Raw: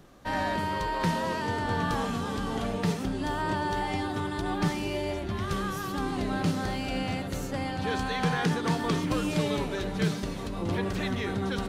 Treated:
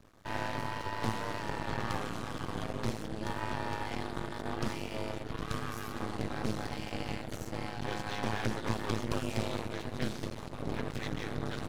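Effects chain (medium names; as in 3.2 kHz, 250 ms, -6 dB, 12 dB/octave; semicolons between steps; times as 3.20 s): ring modulator 53 Hz; half-wave rectifier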